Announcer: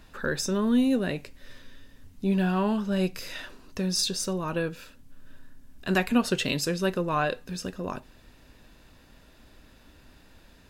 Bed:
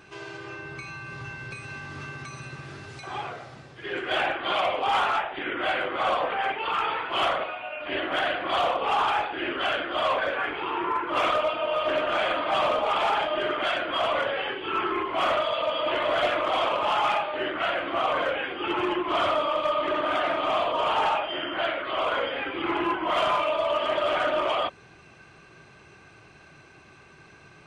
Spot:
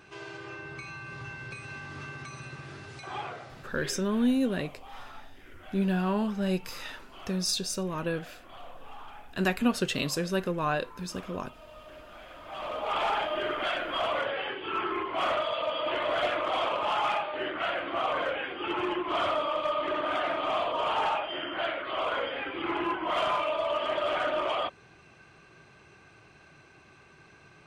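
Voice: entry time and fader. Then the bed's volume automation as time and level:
3.50 s, -2.5 dB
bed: 3.85 s -3 dB
4.05 s -23.5 dB
12.27 s -23.5 dB
12.96 s -4 dB

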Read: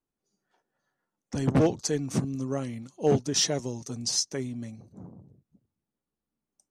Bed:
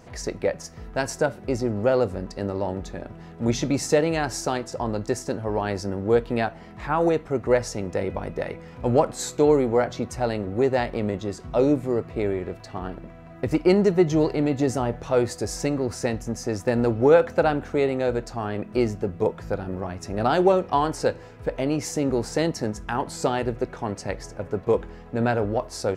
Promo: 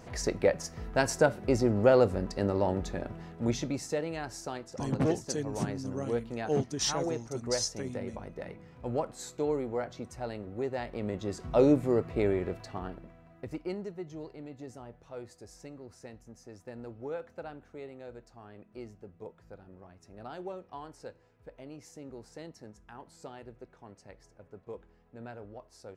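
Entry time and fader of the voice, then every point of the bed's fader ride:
3.45 s, -6.0 dB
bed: 3.12 s -1 dB
3.89 s -12.5 dB
10.79 s -12.5 dB
11.46 s -2.5 dB
12.53 s -2.5 dB
13.98 s -22 dB

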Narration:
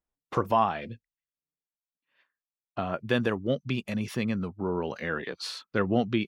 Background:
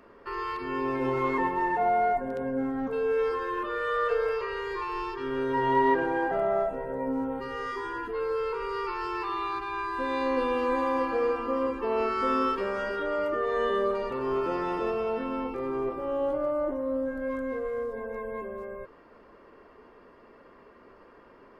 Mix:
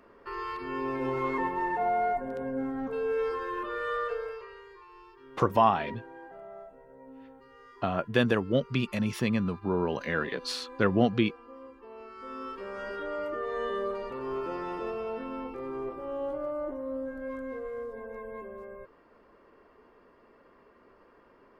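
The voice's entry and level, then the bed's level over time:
5.05 s, +1.5 dB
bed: 3.93 s -3 dB
4.80 s -19.5 dB
12.05 s -19.5 dB
12.90 s -5.5 dB

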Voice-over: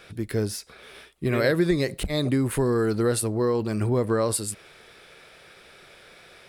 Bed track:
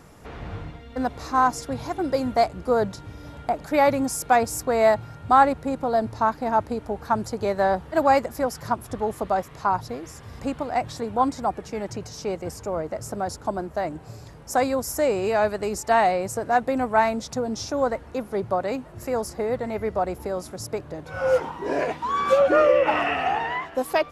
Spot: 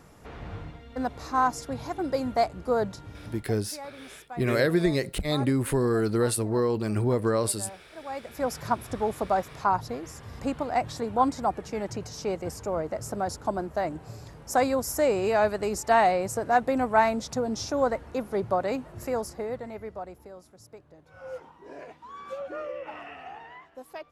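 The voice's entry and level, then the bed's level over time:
3.15 s, -1.5 dB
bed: 3.34 s -4 dB
3.55 s -22.5 dB
8.02 s -22.5 dB
8.49 s -1.5 dB
19.00 s -1.5 dB
20.46 s -18.5 dB

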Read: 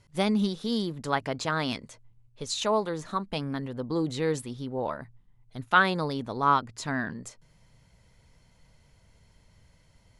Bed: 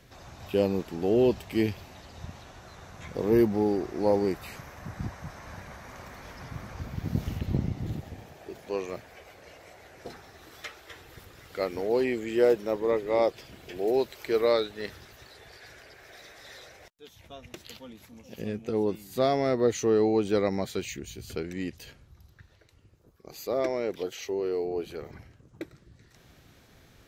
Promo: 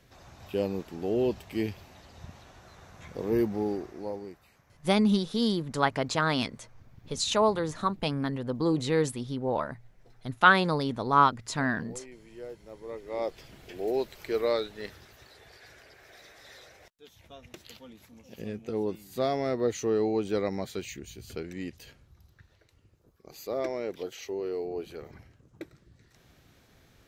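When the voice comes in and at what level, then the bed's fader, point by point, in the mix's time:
4.70 s, +2.0 dB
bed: 3.73 s -4.5 dB
4.50 s -20.5 dB
12.59 s -20.5 dB
13.43 s -3.5 dB

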